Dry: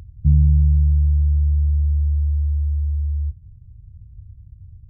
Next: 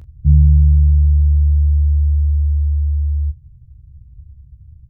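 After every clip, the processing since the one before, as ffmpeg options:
ffmpeg -i in.wav -af "aecho=1:1:15|41:0.531|0.211" out.wav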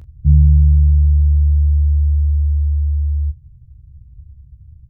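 ffmpeg -i in.wav -af anull out.wav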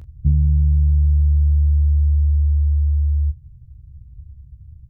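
ffmpeg -i in.wav -af "acompressor=threshold=-12dB:ratio=6" out.wav

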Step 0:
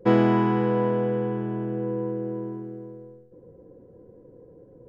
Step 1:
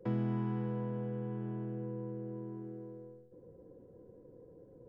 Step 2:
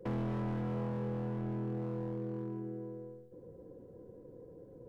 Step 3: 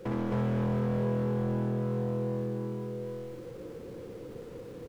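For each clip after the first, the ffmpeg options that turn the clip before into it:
ffmpeg -i in.wav -filter_complex "[0:a]acrossover=split=190[link_01][link_02];[link_02]acompressor=threshold=-37dB:ratio=4[link_03];[link_01][link_03]amix=inputs=2:normalize=0,volume=-6.5dB" out.wav
ffmpeg -i in.wav -af "asoftclip=type=hard:threshold=-36.5dB,volume=3.5dB" out.wav
ffmpeg -i in.wav -af "aeval=exprs='val(0)+0.5*0.00188*sgn(val(0))':channel_layout=same,aecho=1:1:61.22|265.3:0.708|0.891,volume=3dB" out.wav

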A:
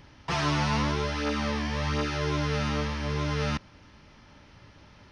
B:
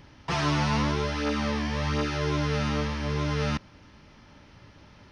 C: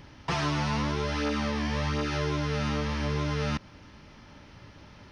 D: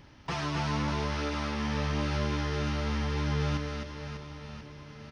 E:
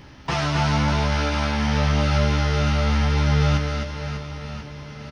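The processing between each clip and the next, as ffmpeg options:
ffmpeg -i in.wav -af "equalizer=frequency=240:width_type=o:width=2.4:gain=2" out.wav
ffmpeg -i in.wav -af "acompressor=threshold=-27dB:ratio=6,volume=2dB" out.wav
ffmpeg -i in.wav -af "aecho=1:1:260|598|1037|1609|2351:0.631|0.398|0.251|0.158|0.1,volume=-4.5dB" out.wav
ffmpeg -i in.wav -filter_complex "[0:a]asplit=2[link_01][link_02];[link_02]adelay=15,volume=-5.5dB[link_03];[link_01][link_03]amix=inputs=2:normalize=0,volume=8.5dB" out.wav

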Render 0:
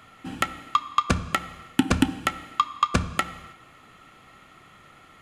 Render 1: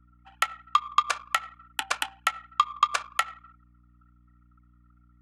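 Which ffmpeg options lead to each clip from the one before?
ffmpeg -i in.wav -af "highpass=frequency=730:width=0.5412,highpass=frequency=730:width=1.3066,anlmdn=0.631,aeval=exprs='val(0)+0.00126*(sin(2*PI*60*n/s)+sin(2*PI*2*60*n/s)/2+sin(2*PI*3*60*n/s)/3+sin(2*PI*4*60*n/s)/4+sin(2*PI*5*60*n/s)/5)':channel_layout=same" out.wav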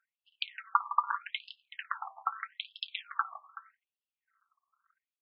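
ffmpeg -i in.wav -af "tremolo=f=210:d=1,aecho=1:1:55|160|377:0.119|0.299|0.178,afftfilt=real='re*between(b*sr/1024,860*pow(3800/860,0.5+0.5*sin(2*PI*0.81*pts/sr))/1.41,860*pow(3800/860,0.5+0.5*sin(2*PI*0.81*pts/sr))*1.41)':imag='im*between(b*sr/1024,860*pow(3800/860,0.5+0.5*sin(2*PI*0.81*pts/sr))/1.41,860*pow(3800/860,0.5+0.5*sin(2*PI*0.81*pts/sr))*1.41)':win_size=1024:overlap=0.75" out.wav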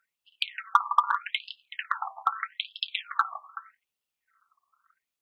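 ffmpeg -i in.wav -filter_complex "[0:a]bandreject=frequency=1600:width=23,asplit=2[link_01][link_02];[link_02]volume=22dB,asoftclip=hard,volume=-22dB,volume=-7dB[link_03];[link_01][link_03]amix=inputs=2:normalize=0,volume=4dB" out.wav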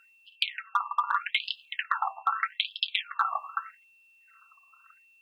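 ffmpeg -i in.wav -af "areverse,acompressor=threshold=-32dB:ratio=10,areverse,aeval=exprs='val(0)+0.000447*sin(2*PI*2700*n/s)':channel_layout=same,volume=8.5dB" out.wav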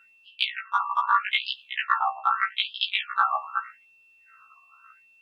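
ffmpeg -i in.wav -af "lowpass=frequency=3500:poles=1,afftfilt=real='re*1.73*eq(mod(b,3),0)':imag='im*1.73*eq(mod(b,3),0)':win_size=2048:overlap=0.75,volume=8dB" out.wav

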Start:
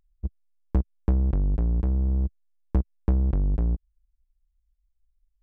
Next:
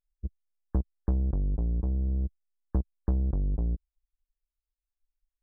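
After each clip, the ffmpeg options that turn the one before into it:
ffmpeg -i in.wav -af "afftdn=noise_reduction=17:noise_floor=-43,volume=-4.5dB" out.wav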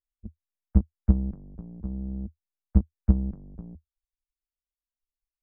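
ffmpeg -i in.wav -af "equalizer=frequency=80:width=1.7:gain=14,aeval=exprs='0.355*(cos(1*acos(clip(val(0)/0.355,-1,1)))-cos(1*PI/2))+0.141*(cos(3*acos(clip(val(0)/0.355,-1,1)))-cos(3*PI/2))':channel_layout=same" out.wav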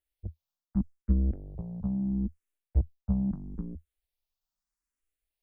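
ffmpeg -i in.wav -filter_complex "[0:a]areverse,acompressor=threshold=-26dB:ratio=6,areverse,asplit=2[link_01][link_02];[link_02]afreqshift=0.77[link_03];[link_01][link_03]amix=inputs=2:normalize=1,volume=7dB" out.wav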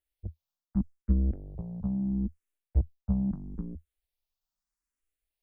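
ffmpeg -i in.wav -af anull out.wav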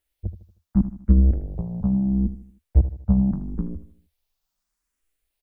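ffmpeg -i in.wav -af "aecho=1:1:78|156|234|312:0.224|0.094|0.0395|0.0166,volume=9dB" out.wav

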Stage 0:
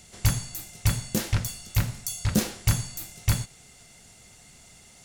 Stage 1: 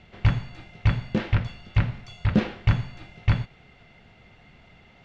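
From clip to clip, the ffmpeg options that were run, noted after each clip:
ffmpeg -i in.wav -af "lowpass=frequency=3000:width=0.5412,lowpass=frequency=3000:width=1.3066,volume=3dB" out.wav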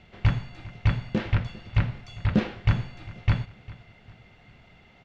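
ffmpeg -i in.wav -af "aecho=1:1:401|802|1203:0.1|0.041|0.0168,volume=-1.5dB" out.wav

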